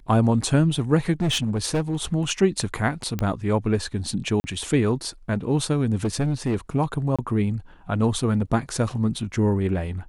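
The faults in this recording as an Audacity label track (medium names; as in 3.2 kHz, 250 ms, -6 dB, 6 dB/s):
1.120000	2.130000	clipped -18.5 dBFS
3.190000	3.190000	pop -13 dBFS
4.400000	4.440000	dropout 40 ms
6.040000	6.560000	clipped -19 dBFS
7.160000	7.190000	dropout 26 ms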